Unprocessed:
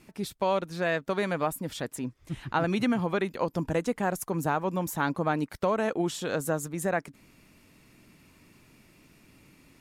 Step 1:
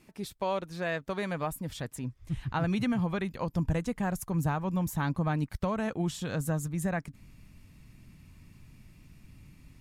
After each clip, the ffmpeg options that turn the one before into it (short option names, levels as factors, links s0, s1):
-af "asubboost=boost=7.5:cutoff=140,bandreject=f=1400:w=21,volume=0.631"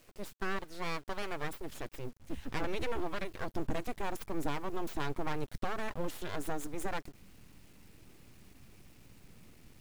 -af "aeval=exprs='abs(val(0))':c=same,acrusher=bits=7:dc=4:mix=0:aa=0.000001,volume=0.75"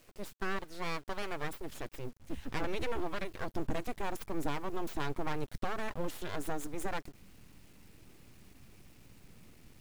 -af anull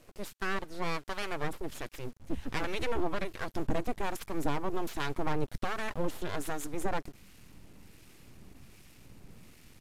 -filter_complex "[0:a]acrossover=split=1200[s0][s1];[s0]aeval=exprs='val(0)*(1-0.5/2+0.5/2*cos(2*PI*1.3*n/s))':c=same[s2];[s1]aeval=exprs='val(0)*(1-0.5/2-0.5/2*cos(2*PI*1.3*n/s))':c=same[s3];[s2][s3]amix=inputs=2:normalize=0,aresample=32000,aresample=44100,volume=1.88"